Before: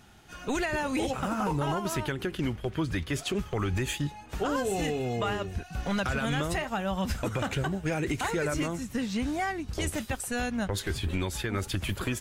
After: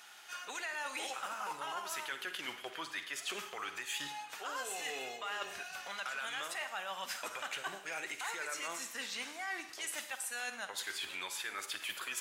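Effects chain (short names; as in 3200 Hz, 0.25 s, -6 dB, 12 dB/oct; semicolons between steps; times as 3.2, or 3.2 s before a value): HPF 1100 Hz 12 dB/oct; reverse; compressor 6:1, threshold -43 dBFS, peak gain reduction 13 dB; reverse; Schroeder reverb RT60 0.73 s, DRR 9 dB; gain +5 dB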